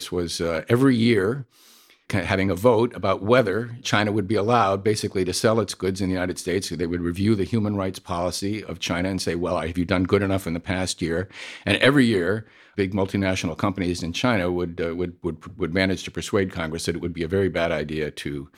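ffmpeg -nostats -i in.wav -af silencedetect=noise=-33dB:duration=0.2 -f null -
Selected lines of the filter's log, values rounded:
silence_start: 1.42
silence_end: 2.10 | silence_duration: 0.68
silence_start: 12.41
silence_end: 12.78 | silence_duration: 0.37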